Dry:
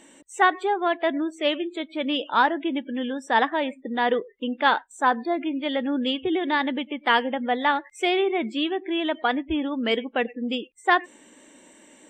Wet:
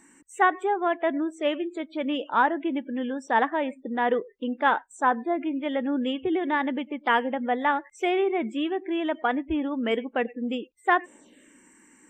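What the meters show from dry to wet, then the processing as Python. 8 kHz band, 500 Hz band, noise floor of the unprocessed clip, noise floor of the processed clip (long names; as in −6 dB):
can't be measured, −1.0 dB, −53 dBFS, −57 dBFS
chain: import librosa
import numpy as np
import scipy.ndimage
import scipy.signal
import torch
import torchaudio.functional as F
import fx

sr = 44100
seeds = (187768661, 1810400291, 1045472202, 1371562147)

y = fx.env_phaser(x, sr, low_hz=530.0, high_hz=4400.0, full_db=-25.5)
y = F.gain(torch.from_numpy(y), -1.0).numpy()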